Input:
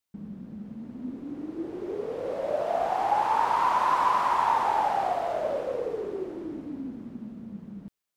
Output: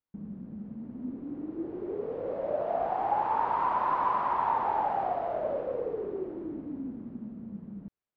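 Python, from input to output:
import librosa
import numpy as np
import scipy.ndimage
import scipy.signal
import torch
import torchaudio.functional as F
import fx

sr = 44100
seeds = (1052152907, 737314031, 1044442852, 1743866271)

y = fx.spacing_loss(x, sr, db_at_10k=41)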